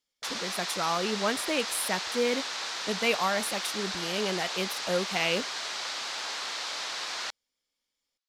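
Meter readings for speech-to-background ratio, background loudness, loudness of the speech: 2.0 dB, -32.5 LUFS, -30.5 LUFS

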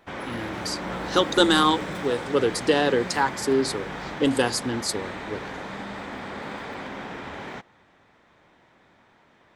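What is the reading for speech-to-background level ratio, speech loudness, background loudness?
10.0 dB, -24.0 LUFS, -34.0 LUFS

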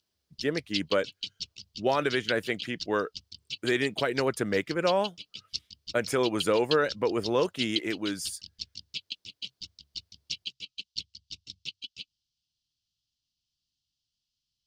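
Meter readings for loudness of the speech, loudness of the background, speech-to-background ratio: -29.0 LUFS, -38.0 LUFS, 9.0 dB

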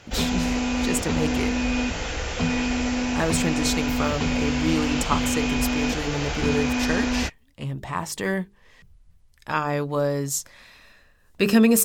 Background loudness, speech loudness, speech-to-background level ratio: -25.0 LUFS, -27.0 LUFS, -2.0 dB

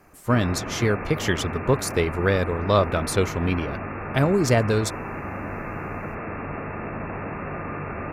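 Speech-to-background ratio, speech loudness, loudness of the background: 9.0 dB, -23.5 LUFS, -32.5 LUFS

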